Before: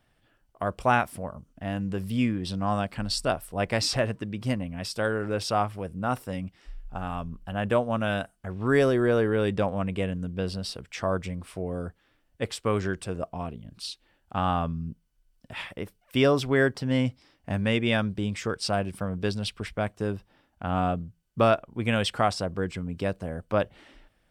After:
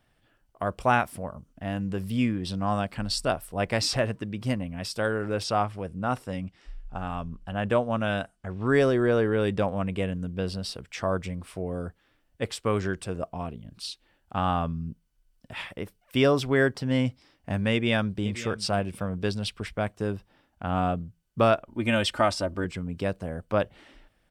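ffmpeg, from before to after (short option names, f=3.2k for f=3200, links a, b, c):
-filter_complex "[0:a]asettb=1/sr,asplit=3[a][b][c];[a]atrim=end=5.444[d];[b]atrim=start=5.44:end=9.41,asetpts=PTS-STARTPTS,afade=t=in:d=0.004:c=qsin,afade=t=out:st=3.966:d=0.004:c=qsin,lowpass=9.1k[e];[c]atrim=start=9.406[f];[d][e]acrossfade=d=0.004:c1=hsin:c2=qsin[g];[g][f]acrossfade=d=0.004:c1=qsin:c2=hsin,asplit=2[h][i];[i]afade=t=in:st=17.72:d=0.01,afade=t=out:st=18.26:d=0.01,aecho=0:1:530|1060:0.177828|0.0266742[j];[h][j]amix=inputs=2:normalize=0,asettb=1/sr,asplit=3[k][l][m];[k]atrim=end=21.674[n];[l]atrim=start=21.67:end=22.65,asetpts=PTS-STARTPTS,afade=t=in:d=0.004:c=qsin,afade=t=out:st=0.976:d=0.004:c=qsin,aecho=1:1:3.3:0.65,atrim=end_sample=43218[o];[m]atrim=start=22.646[p];[n][o]acrossfade=d=0.004:c1=hsin:c2=qsin[q];[q][p]acrossfade=d=0.004:c1=qsin:c2=hsin"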